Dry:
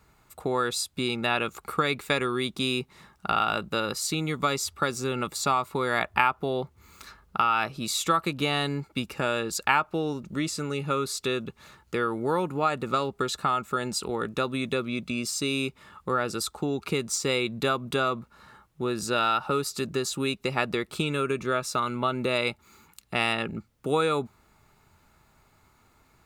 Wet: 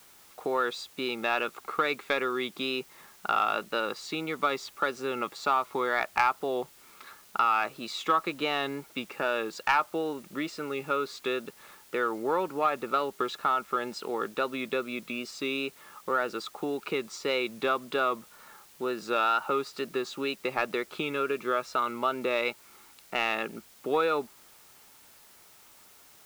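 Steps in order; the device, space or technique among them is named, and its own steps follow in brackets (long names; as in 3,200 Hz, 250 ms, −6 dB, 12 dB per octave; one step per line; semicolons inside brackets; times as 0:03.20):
tape answering machine (band-pass filter 330–3,100 Hz; soft clipping −12.5 dBFS, distortion −21 dB; tape wow and flutter; white noise bed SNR 25 dB)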